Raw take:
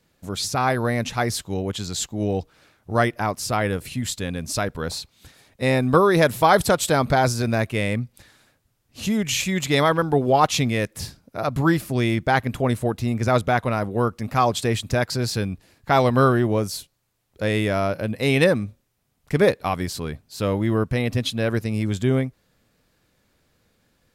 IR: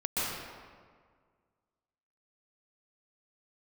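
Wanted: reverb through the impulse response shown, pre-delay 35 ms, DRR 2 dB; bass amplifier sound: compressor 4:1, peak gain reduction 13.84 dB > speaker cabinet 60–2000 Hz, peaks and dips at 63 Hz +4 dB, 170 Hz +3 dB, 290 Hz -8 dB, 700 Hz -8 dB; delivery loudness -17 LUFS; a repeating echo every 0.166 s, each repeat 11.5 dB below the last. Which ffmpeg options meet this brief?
-filter_complex "[0:a]aecho=1:1:166|332|498:0.266|0.0718|0.0194,asplit=2[a][b];[1:a]atrim=start_sample=2205,adelay=35[c];[b][c]afir=irnorm=-1:irlink=0,volume=-10.5dB[d];[a][d]amix=inputs=2:normalize=0,acompressor=threshold=-26dB:ratio=4,highpass=f=60:w=0.5412,highpass=f=60:w=1.3066,equalizer=f=63:t=q:w=4:g=4,equalizer=f=170:t=q:w=4:g=3,equalizer=f=290:t=q:w=4:g=-8,equalizer=f=700:t=q:w=4:g=-8,lowpass=f=2k:w=0.5412,lowpass=f=2k:w=1.3066,volume=13.5dB"

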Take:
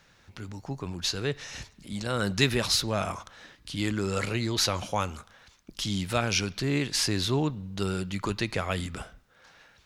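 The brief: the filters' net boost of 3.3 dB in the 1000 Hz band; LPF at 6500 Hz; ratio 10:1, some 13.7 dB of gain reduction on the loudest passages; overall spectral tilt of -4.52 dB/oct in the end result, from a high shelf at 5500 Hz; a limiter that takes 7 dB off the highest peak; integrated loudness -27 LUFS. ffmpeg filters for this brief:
-af "lowpass=6.5k,equalizer=f=1k:t=o:g=4.5,highshelf=f=5.5k:g=-3,acompressor=threshold=-32dB:ratio=10,volume=12dB,alimiter=limit=-14dB:level=0:latency=1"

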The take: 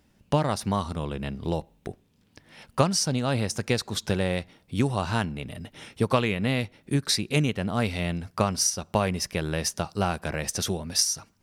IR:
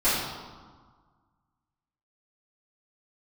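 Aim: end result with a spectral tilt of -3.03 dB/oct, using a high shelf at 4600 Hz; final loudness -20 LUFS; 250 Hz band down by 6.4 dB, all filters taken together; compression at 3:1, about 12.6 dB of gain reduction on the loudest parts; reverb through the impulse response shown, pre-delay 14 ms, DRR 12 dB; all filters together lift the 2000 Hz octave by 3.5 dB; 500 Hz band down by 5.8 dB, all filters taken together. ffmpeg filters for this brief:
-filter_complex "[0:a]equalizer=f=250:t=o:g=-8,equalizer=f=500:t=o:g=-5.5,equalizer=f=2k:t=o:g=3.5,highshelf=f=4.6k:g=6.5,acompressor=threshold=-32dB:ratio=3,asplit=2[a][b];[1:a]atrim=start_sample=2205,adelay=14[c];[b][c]afir=irnorm=-1:irlink=0,volume=-27.5dB[d];[a][d]amix=inputs=2:normalize=0,volume=14dB"

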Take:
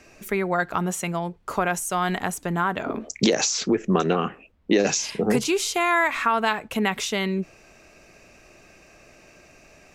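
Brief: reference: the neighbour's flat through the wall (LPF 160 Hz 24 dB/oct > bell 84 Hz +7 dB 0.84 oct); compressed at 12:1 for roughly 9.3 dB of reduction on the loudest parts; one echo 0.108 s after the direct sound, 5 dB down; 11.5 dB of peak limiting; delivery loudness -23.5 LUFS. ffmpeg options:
-af "acompressor=threshold=-24dB:ratio=12,alimiter=limit=-24dB:level=0:latency=1,lowpass=f=160:w=0.5412,lowpass=f=160:w=1.3066,equalizer=f=84:t=o:w=0.84:g=7,aecho=1:1:108:0.562,volume=21.5dB"

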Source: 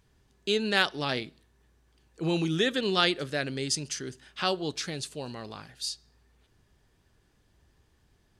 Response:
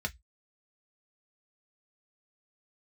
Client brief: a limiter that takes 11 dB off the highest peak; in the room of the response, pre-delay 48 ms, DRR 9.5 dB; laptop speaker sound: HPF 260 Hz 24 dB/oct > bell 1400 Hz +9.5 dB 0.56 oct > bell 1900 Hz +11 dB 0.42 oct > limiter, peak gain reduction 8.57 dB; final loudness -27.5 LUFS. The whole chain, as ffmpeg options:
-filter_complex "[0:a]alimiter=limit=-19.5dB:level=0:latency=1,asplit=2[a][b];[1:a]atrim=start_sample=2205,adelay=48[c];[b][c]afir=irnorm=-1:irlink=0,volume=-13dB[d];[a][d]amix=inputs=2:normalize=0,highpass=f=260:w=0.5412,highpass=f=260:w=1.3066,equalizer=f=1.4k:t=o:w=0.56:g=9.5,equalizer=f=1.9k:t=o:w=0.42:g=11,volume=4dB,alimiter=limit=-15.5dB:level=0:latency=1"

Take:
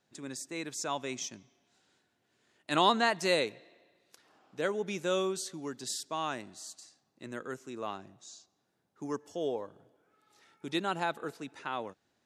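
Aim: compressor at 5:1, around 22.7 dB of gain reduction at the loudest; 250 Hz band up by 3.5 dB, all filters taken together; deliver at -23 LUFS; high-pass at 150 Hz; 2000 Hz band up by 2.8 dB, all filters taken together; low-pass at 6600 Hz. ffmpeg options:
-af "highpass=150,lowpass=6.6k,equalizer=f=250:t=o:g=5.5,equalizer=f=2k:t=o:g=3.5,acompressor=threshold=-46dB:ratio=5,volume=26dB"

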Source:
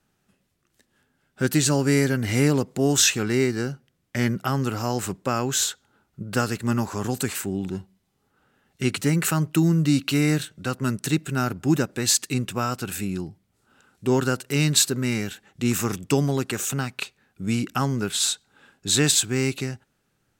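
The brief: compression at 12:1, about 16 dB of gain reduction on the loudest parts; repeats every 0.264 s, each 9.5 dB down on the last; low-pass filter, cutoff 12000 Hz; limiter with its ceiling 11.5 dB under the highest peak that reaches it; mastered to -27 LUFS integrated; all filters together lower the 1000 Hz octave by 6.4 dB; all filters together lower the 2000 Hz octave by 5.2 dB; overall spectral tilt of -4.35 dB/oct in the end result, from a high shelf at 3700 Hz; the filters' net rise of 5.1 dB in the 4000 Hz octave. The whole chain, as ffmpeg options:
-af "lowpass=12k,equalizer=f=1k:t=o:g=-7,equalizer=f=2k:t=o:g=-8.5,highshelf=f=3.7k:g=5,equalizer=f=4k:t=o:g=5,acompressor=threshold=-26dB:ratio=12,alimiter=level_in=0.5dB:limit=-24dB:level=0:latency=1,volume=-0.5dB,aecho=1:1:264|528|792|1056:0.335|0.111|0.0365|0.012,volume=7.5dB"

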